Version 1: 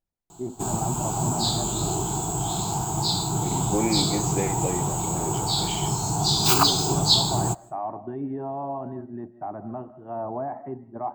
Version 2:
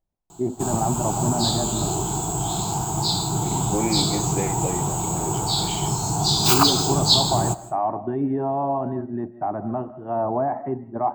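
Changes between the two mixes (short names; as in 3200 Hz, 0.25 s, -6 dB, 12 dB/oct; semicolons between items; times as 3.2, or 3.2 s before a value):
first voice +7.5 dB; background: send +11.5 dB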